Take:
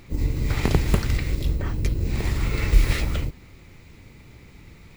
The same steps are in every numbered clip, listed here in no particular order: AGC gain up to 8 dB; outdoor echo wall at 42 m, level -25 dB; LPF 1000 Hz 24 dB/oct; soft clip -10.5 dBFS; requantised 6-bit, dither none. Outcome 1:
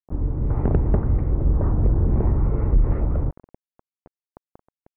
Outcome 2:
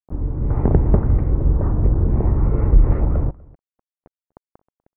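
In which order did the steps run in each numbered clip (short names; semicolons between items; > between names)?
outdoor echo > requantised > LPF > AGC > soft clip; requantised > LPF > soft clip > AGC > outdoor echo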